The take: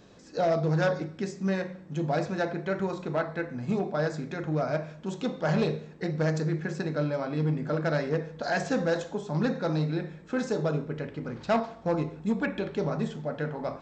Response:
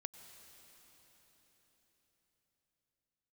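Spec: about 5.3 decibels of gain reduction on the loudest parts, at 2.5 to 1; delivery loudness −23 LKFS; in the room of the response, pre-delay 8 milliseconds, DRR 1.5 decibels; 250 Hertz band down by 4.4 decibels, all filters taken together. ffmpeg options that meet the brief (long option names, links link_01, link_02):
-filter_complex "[0:a]equalizer=frequency=250:width_type=o:gain=-7,acompressor=threshold=-30dB:ratio=2.5,asplit=2[link_01][link_02];[1:a]atrim=start_sample=2205,adelay=8[link_03];[link_02][link_03]afir=irnorm=-1:irlink=0,volume=2.5dB[link_04];[link_01][link_04]amix=inputs=2:normalize=0,volume=9.5dB"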